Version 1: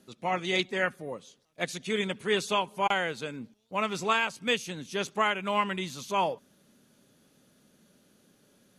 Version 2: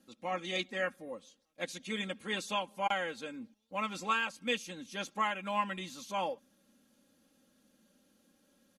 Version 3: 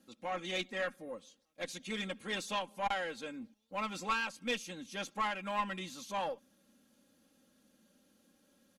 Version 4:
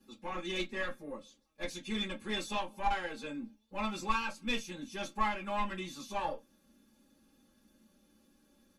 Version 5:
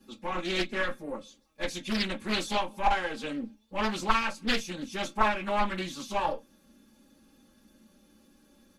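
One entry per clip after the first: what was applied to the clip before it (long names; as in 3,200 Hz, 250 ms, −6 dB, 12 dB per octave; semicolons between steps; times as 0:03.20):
comb filter 3.7 ms, depth 74%; level −8 dB
one-sided soft clipper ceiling −29 dBFS
convolution reverb RT60 0.10 s, pre-delay 5 ms, DRR −3 dB; level −7.5 dB
highs frequency-modulated by the lows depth 0.53 ms; level +6.5 dB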